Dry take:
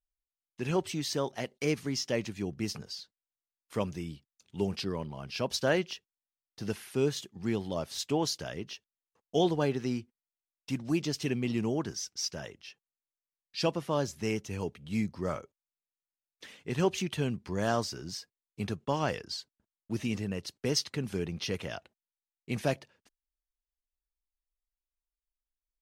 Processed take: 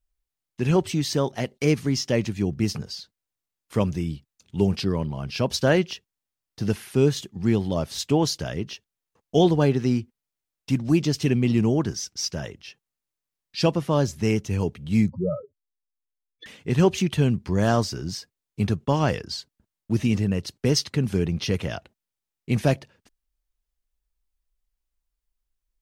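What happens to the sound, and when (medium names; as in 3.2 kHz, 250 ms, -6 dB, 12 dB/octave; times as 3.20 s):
15.10–16.46 s: spectral contrast enhancement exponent 3.6
whole clip: bass shelf 230 Hz +9.5 dB; trim +5.5 dB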